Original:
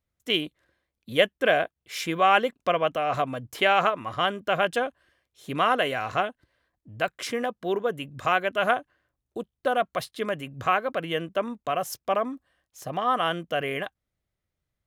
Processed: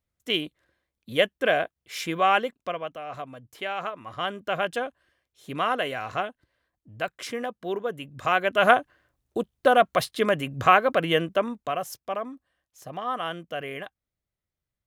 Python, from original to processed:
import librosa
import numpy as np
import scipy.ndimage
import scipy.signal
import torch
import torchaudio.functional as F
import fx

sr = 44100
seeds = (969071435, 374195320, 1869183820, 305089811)

y = fx.gain(x, sr, db=fx.line((2.3, -1.0), (2.93, -10.5), (3.77, -10.5), (4.37, -3.0), (8.1, -3.0), (8.73, 6.0), (11.14, 6.0), (12.06, -5.5)))